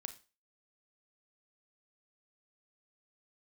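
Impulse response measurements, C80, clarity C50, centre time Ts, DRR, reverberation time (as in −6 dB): 19.5 dB, 13.5 dB, 7 ms, 8.5 dB, 0.35 s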